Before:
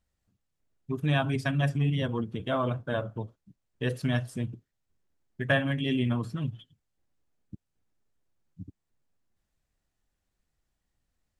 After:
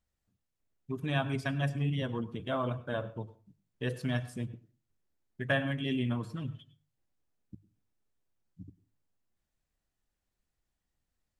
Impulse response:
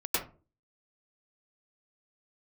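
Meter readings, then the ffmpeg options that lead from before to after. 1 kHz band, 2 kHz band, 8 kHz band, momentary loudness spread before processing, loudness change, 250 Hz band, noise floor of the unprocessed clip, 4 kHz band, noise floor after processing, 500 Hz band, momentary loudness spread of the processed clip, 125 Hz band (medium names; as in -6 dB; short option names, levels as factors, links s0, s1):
-4.0 dB, -4.0 dB, -4.0 dB, 19 LU, -4.5 dB, -4.5 dB, -82 dBFS, -4.0 dB, -85 dBFS, -4.0 dB, 17 LU, -5.0 dB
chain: -filter_complex "[0:a]bandreject=f=50:t=h:w=6,bandreject=f=100:t=h:w=6,bandreject=f=150:t=h:w=6,asplit=2[s0][s1];[1:a]atrim=start_sample=2205,lowshelf=f=380:g=-6.5[s2];[s1][s2]afir=irnorm=-1:irlink=0,volume=0.075[s3];[s0][s3]amix=inputs=2:normalize=0,volume=0.596"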